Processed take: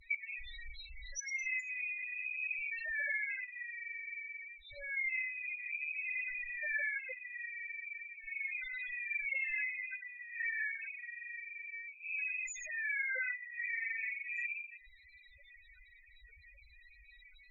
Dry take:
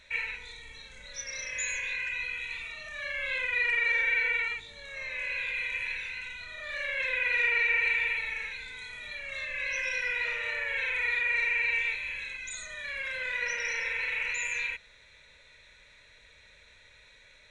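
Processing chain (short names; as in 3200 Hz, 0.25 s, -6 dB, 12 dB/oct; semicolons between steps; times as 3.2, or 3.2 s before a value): loudest bins only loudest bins 4; treble ducked by the level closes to 690 Hz, closed at -32.5 dBFS; gain +6 dB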